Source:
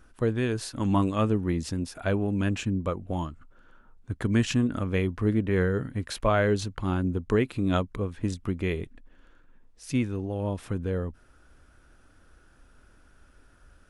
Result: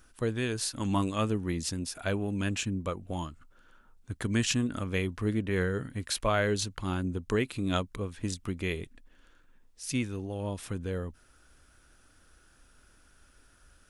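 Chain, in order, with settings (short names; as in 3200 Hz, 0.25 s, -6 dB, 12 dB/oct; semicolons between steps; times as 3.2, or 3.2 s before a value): high shelf 2600 Hz +12 dB; gain -5 dB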